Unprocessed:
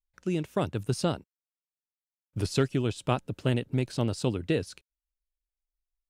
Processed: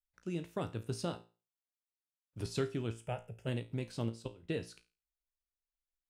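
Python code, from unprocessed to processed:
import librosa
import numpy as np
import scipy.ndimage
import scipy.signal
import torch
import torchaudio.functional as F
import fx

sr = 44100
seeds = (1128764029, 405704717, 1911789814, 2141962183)

y = fx.low_shelf(x, sr, hz=230.0, db=-6.5, at=(1.05, 2.4))
y = fx.fixed_phaser(y, sr, hz=1100.0, stages=6, at=(2.9, 3.46), fade=0.02)
y = fx.level_steps(y, sr, step_db=24, at=(4.08, 4.48), fade=0.02)
y = fx.comb_fb(y, sr, f0_hz=57.0, decay_s=0.32, harmonics='all', damping=0.0, mix_pct=70)
y = F.gain(torch.from_numpy(y), -4.0).numpy()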